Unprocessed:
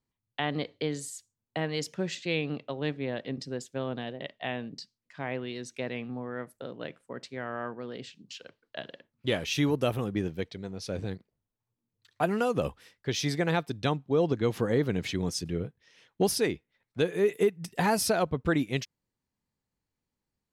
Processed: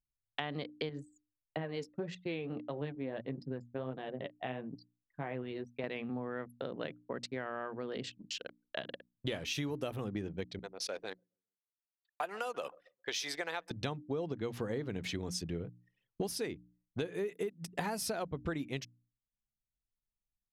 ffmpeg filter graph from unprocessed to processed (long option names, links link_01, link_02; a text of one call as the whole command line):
ffmpeg -i in.wav -filter_complex "[0:a]asettb=1/sr,asplit=3[link_01][link_02][link_03];[link_01]atrim=end=0.894[link_04];[link_02]atrim=start=0.89:end=5.84,asetpts=PTS-STARTPTS,afade=type=in:duration=0.004:curve=qsin,afade=type=out:start_time=4.946:duration=0.004:curve=qsin,highshelf=frequency=2700:gain=-11.5,flanger=delay=5.2:depth=6.4:regen=45:speed=1.6:shape=triangular[link_05];[link_03]atrim=start=5.836[link_06];[link_04][link_05]acrossfade=duration=0.004:curve1=hsin:curve2=qsin[link_07];[link_07][link_06]acrossfade=duration=0.004:curve1=qsin:curve2=hsin,asettb=1/sr,asplit=3[link_08][link_09][link_10];[link_08]atrim=end=10.594[link_11];[link_09]atrim=start=10.59:end=13.71,asetpts=PTS-STARTPTS,afade=type=in:duration=0.004:curve=qsin,afade=type=out:start_time=3.116:duration=0.004:curve=qsin,highpass=660,asplit=2[link_12][link_13];[link_13]adelay=135,lowpass=frequency=3300:poles=1,volume=-21dB,asplit=2[link_14][link_15];[link_15]adelay=135,lowpass=frequency=3300:poles=1,volume=0.47,asplit=2[link_16][link_17];[link_17]adelay=135,lowpass=frequency=3300:poles=1,volume=0.47[link_18];[link_12][link_14][link_16][link_18]amix=inputs=4:normalize=0,atrim=end_sample=137592[link_19];[link_10]atrim=start=13.706[link_20];[link_11][link_19]acrossfade=duration=0.004:curve1=hsin:curve2=qsin[link_21];[link_21][link_20]acrossfade=duration=0.004:curve1=qsin:curve2=hsin,anlmdn=0.0158,bandreject=frequency=60:width_type=h:width=6,bandreject=frequency=120:width_type=h:width=6,bandreject=frequency=180:width_type=h:width=6,bandreject=frequency=240:width_type=h:width=6,bandreject=frequency=300:width_type=h:width=6,acompressor=threshold=-39dB:ratio=6,volume=4dB" out.wav